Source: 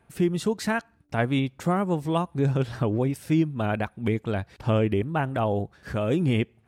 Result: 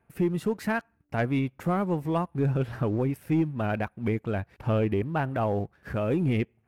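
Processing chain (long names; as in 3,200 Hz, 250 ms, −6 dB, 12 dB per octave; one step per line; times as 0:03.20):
flat-topped bell 5,400 Hz −9.5 dB
leveller curve on the samples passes 1
level −5 dB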